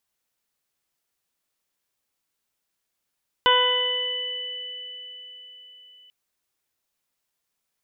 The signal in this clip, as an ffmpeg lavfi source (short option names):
-f lavfi -i "aevalsrc='0.0794*pow(10,-3*t/2.82)*sin(2*PI*498*t)+0.15*pow(10,-3*t/1.26)*sin(2*PI*996*t)+0.075*pow(10,-3*t/0.94)*sin(2*PI*1494*t)+0.0531*pow(10,-3*t/3.3)*sin(2*PI*1992*t)+0.0141*pow(10,-3*t/1.12)*sin(2*PI*2490*t)+0.126*pow(10,-3*t/4.98)*sin(2*PI*2988*t)+0.0282*pow(10,-3*t/1.31)*sin(2*PI*3486*t)':d=2.64:s=44100"